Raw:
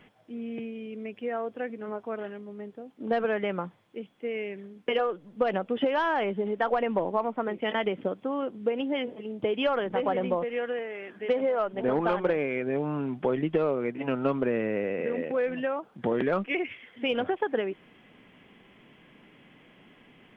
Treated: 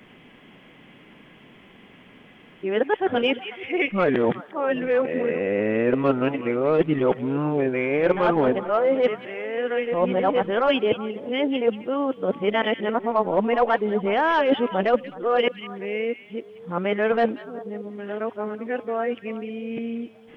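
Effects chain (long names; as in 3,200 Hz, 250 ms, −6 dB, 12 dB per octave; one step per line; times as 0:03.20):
played backwards from end to start
echo through a band-pass that steps 186 ms, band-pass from 2,700 Hz, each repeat −1.4 octaves, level −10 dB
level +6 dB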